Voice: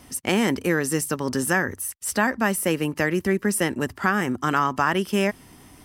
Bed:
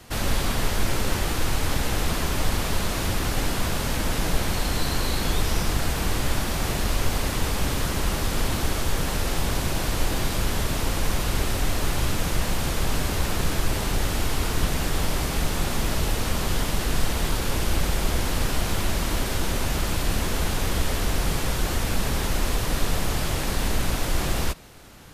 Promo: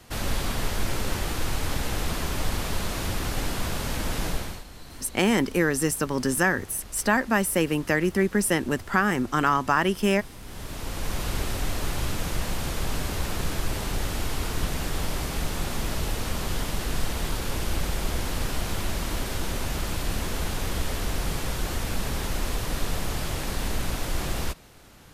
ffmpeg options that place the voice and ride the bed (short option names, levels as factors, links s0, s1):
-filter_complex "[0:a]adelay=4900,volume=0.944[s0];[1:a]volume=3.98,afade=t=out:st=4.26:d=0.38:silence=0.158489,afade=t=in:st=10.42:d=0.83:silence=0.16788[s1];[s0][s1]amix=inputs=2:normalize=0"